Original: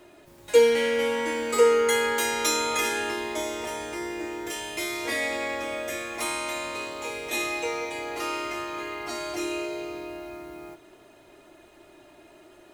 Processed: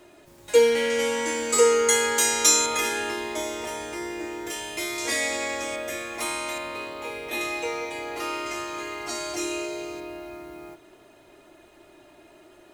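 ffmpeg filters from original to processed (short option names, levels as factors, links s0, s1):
-af "asetnsamples=n=441:p=0,asendcmd='0.9 equalizer g 12;2.66 equalizer g 2;4.98 equalizer g 12;5.76 equalizer g 1;6.58 equalizer g -9;7.41 equalizer g -1;8.46 equalizer g 8;10 equalizer g 0',equalizer=f=7000:t=o:w=1.1:g=3"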